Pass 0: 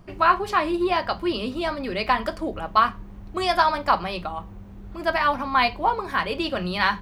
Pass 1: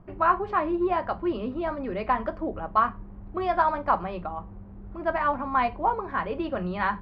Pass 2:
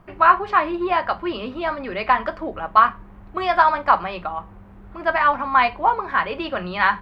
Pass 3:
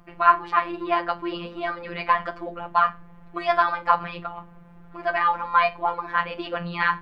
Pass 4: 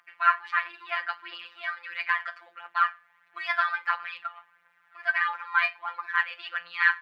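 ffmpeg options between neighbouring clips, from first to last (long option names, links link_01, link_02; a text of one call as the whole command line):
ffmpeg -i in.wav -af "lowpass=1400,volume=-2dB" out.wav
ffmpeg -i in.wav -af "tiltshelf=frequency=890:gain=-8,volume=6.5dB" out.wav
ffmpeg -i in.wav -af "afftfilt=real='hypot(re,im)*cos(PI*b)':imag='0':win_size=1024:overlap=0.75,bandreject=frequency=68.84:width_type=h:width=4,bandreject=frequency=137.68:width_type=h:width=4,bandreject=frequency=206.52:width_type=h:width=4,bandreject=frequency=275.36:width_type=h:width=4,bandreject=frequency=344.2:width_type=h:width=4,bandreject=frequency=413.04:width_type=h:width=4" out.wav
ffmpeg -i in.wav -af "highpass=frequency=1700:width_type=q:width=2.4,aphaser=in_gain=1:out_gain=1:delay=1.8:decay=0.37:speed=1.5:type=triangular,volume=-5dB" out.wav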